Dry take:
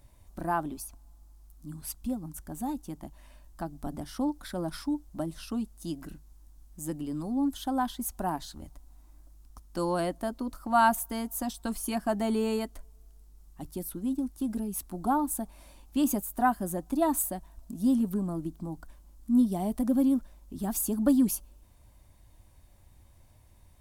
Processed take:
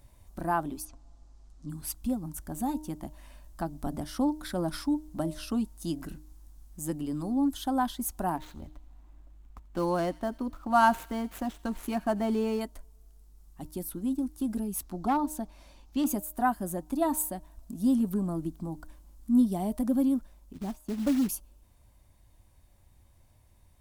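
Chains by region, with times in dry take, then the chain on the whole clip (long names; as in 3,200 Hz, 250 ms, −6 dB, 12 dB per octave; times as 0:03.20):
0:00.85–0:01.70: low-pass filter 7,100 Hz 24 dB per octave + parametric band 480 Hz +5.5 dB 0.82 octaves + comb filter 7.5 ms, depth 37%
0:08.36–0:12.61: running median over 9 samples + delay with a high-pass on its return 87 ms, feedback 54%, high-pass 2,300 Hz, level −16.5 dB
0:14.83–0:16.06: high shelf with overshoot 7,400 Hz −7 dB, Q 1.5 + hard clipping −20 dBFS
0:20.53–0:21.29: low-pass filter 1,000 Hz 6 dB per octave + noise gate −40 dBFS, range −7 dB + floating-point word with a short mantissa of 2 bits
whole clip: hum removal 307.2 Hz, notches 3; speech leveller within 3 dB 2 s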